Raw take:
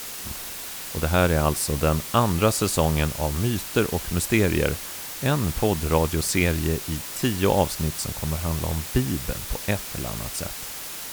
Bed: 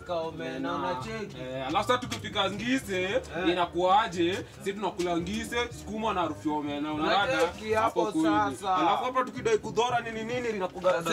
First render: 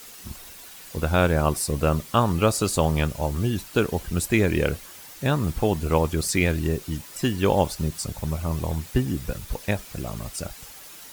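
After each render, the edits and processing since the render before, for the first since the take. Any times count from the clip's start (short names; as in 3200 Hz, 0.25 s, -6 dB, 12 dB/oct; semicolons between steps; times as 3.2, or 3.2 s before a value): denoiser 10 dB, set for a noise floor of -35 dBFS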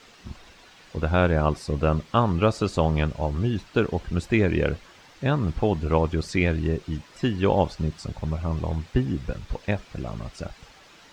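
air absorption 160 m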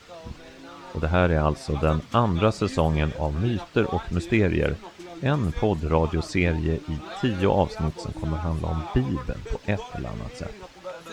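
add bed -12 dB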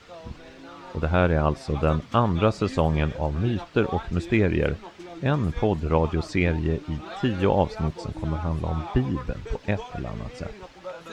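high shelf 6700 Hz -9 dB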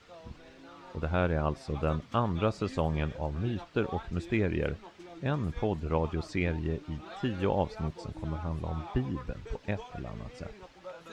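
gain -7.5 dB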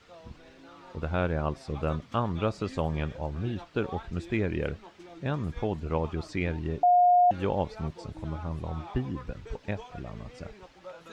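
6.83–7.31 bleep 714 Hz -16.5 dBFS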